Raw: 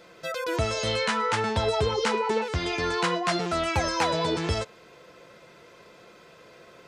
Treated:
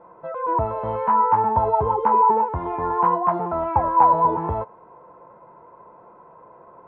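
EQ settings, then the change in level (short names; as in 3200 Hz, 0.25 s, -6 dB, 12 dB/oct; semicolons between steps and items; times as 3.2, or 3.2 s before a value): synth low-pass 950 Hz, resonance Q 9.4; air absorption 420 m; 0.0 dB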